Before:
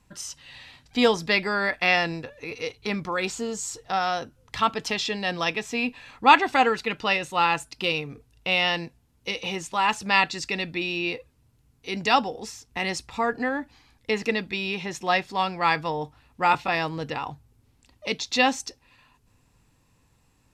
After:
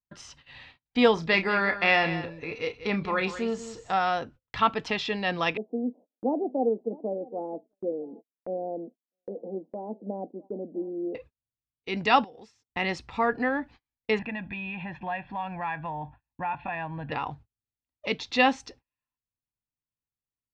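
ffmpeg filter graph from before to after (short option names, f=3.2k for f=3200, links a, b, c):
-filter_complex "[0:a]asettb=1/sr,asplit=3[a][b][c];[a]atrim=end=1.144[d];[b]atrim=start=1.14:end=3.94,asetpts=PTS-STARTPTS,afade=t=in:d=0.004:c=qsin,afade=t=out:st=2.796:d=0.004:c=qsin,asplit=2[e][f];[f]adelay=31,volume=-10dB[g];[e][g]amix=inputs=2:normalize=0,atrim=end_sample=123480,aecho=1:1:189:0.237,atrim=end_sample=123480[h];[c]atrim=start=3.936[i];[d][h]acrossfade=d=0.004:c1=hsin:c2=qsin[j];[j][i]acrossfade=d=0.004:c1=qsin:c2=hsin,asettb=1/sr,asplit=3[k][l][m];[k]atrim=end=5.574[n];[l]atrim=start=5.57:end=11.15,asetpts=PTS-STARTPTS,afade=t=in:d=0.004:c=qsin,afade=t=out:st=5.576:d=0.004:c=qsin,asuperpass=centerf=370:order=12:qfactor=0.77,aecho=1:1:654:0.075,atrim=end_sample=246078[o];[m]atrim=start=11.146[p];[n][o]acrossfade=d=0.004:c1=hsin:c2=qsin[q];[q][p]acrossfade=d=0.004:c1=qsin:c2=hsin,asettb=1/sr,asplit=3[r][s][t];[r]atrim=end=12.244[u];[s]atrim=start=12.24:end=12.69,asetpts=PTS-STARTPTS,afade=t=in:d=0.004:c=qsin,afade=t=out:st=0.446:d=0.004:c=qsin,highpass=90,highshelf=f=4.3k:g=7.5,acompressor=threshold=-44dB:ratio=8:attack=3.2:release=140:knee=1:detection=peak[v];[t]atrim=start=12.686[w];[u][v]acrossfade=d=0.004:c1=hsin:c2=qsin[x];[x][w]acrossfade=d=0.004:c1=qsin:c2=hsin,asettb=1/sr,asplit=3[y][z][aa];[y]atrim=end=14.194[ab];[z]atrim=start=14.19:end=17.12,asetpts=PTS-STARTPTS,afade=t=in:d=0.004:c=qsin,afade=t=out:st=2.926:d=0.004:c=qsin,lowpass=f=2.7k:w=0.5412,lowpass=f=2.7k:w=1.3066,aecho=1:1:1.2:0.85,atrim=end_sample=129213,acompressor=threshold=-34dB:ratio=2.5:attack=3.2:release=140:knee=1:detection=peak[ac];[aa]atrim=start=17.116[ad];[ab][ac]acrossfade=d=0.004:c1=hsin:c2=qsin[ae];[ae][ad]acrossfade=d=0.004:c1=qsin:c2=hsin,agate=range=-37dB:threshold=-46dB:ratio=16:detection=peak,lowpass=3.2k"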